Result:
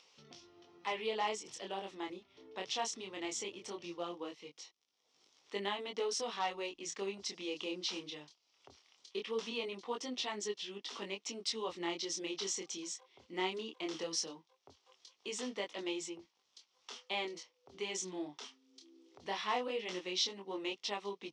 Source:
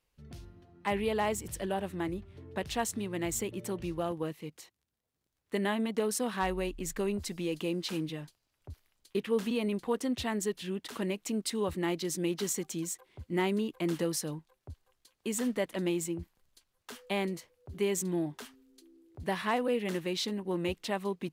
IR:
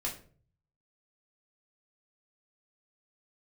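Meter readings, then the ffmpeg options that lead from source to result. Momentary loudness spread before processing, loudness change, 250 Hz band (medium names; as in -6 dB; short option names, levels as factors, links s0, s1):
14 LU, -6.0 dB, -12.0 dB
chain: -af "highpass=480,equalizer=f=610:t=q:w=4:g=-6,equalizer=f=1600:t=q:w=4:g=-10,equalizer=f=3300:t=q:w=4:g=5,equalizer=f=5600:t=q:w=4:g=9,lowpass=f=6300:w=0.5412,lowpass=f=6300:w=1.3066,flanger=delay=19.5:depth=7.6:speed=0.19,acompressor=mode=upward:threshold=0.00251:ratio=2.5,volume=1.12"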